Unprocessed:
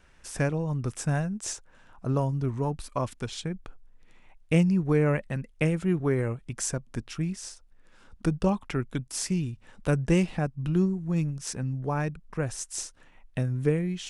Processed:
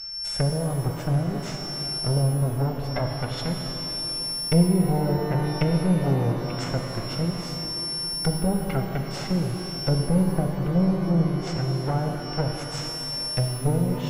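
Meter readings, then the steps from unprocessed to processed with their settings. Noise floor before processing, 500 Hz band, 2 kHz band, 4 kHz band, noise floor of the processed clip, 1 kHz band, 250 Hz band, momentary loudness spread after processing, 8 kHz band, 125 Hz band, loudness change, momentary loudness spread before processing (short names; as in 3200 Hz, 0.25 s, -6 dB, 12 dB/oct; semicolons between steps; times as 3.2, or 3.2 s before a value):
-57 dBFS, +2.0 dB, -0.5 dB, +13.5 dB, -33 dBFS, +5.0 dB, +3.5 dB, 7 LU, -0.5 dB, +5.0 dB, +3.5 dB, 11 LU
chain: minimum comb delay 1.4 ms; whine 5400 Hz -38 dBFS; treble ducked by the level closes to 520 Hz, closed at -23 dBFS; shimmer reverb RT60 3.7 s, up +12 st, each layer -8 dB, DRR 3 dB; gain +3.5 dB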